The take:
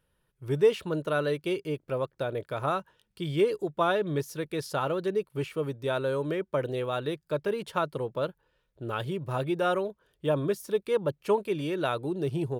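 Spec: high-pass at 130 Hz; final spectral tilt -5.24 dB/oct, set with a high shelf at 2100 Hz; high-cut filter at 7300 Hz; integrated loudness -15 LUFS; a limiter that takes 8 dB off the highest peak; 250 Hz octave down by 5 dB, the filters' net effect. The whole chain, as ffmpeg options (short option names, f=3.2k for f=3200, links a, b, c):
-af "highpass=130,lowpass=7.3k,equalizer=f=250:t=o:g=-7.5,highshelf=f=2.1k:g=-5.5,volume=19.5dB,alimiter=limit=-3dB:level=0:latency=1"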